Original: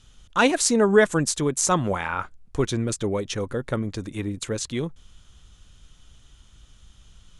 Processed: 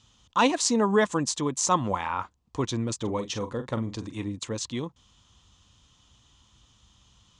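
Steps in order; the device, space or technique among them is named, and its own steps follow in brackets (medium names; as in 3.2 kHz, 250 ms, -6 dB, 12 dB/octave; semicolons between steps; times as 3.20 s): 2.96–4.24 s: doubling 44 ms -10 dB; car door speaker (cabinet simulation 91–7500 Hz, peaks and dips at 160 Hz -6 dB, 400 Hz -6 dB, 620 Hz -4 dB, 1 kHz +7 dB, 1.5 kHz -8 dB, 2.2 kHz -4 dB); trim -1.5 dB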